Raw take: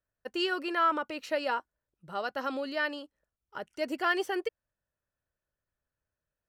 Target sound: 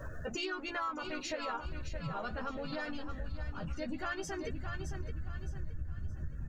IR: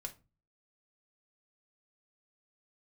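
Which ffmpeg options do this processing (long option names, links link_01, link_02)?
-filter_complex "[0:a]aeval=exprs='val(0)+0.5*0.0168*sgn(val(0))':channel_layout=same,asubboost=boost=10.5:cutoff=150,acrusher=bits=6:mode=log:mix=0:aa=0.000001,afftdn=noise_reduction=31:noise_floor=-42,equalizer=frequency=6700:width=3.4:gain=13.5,bandreject=frequency=3000:width=23,asplit=2[link_01][link_02];[link_02]adelay=13,volume=-4dB[link_03];[link_01][link_03]amix=inputs=2:normalize=0,aecho=1:1:618|1236|1854|2472:0.355|0.131|0.0486|0.018,asplit=2[link_04][link_05];[link_05]asetrate=37084,aresample=44100,atempo=1.18921,volume=-7dB[link_06];[link_04][link_06]amix=inputs=2:normalize=0,acompressor=threshold=-41dB:ratio=4,volume=3dB"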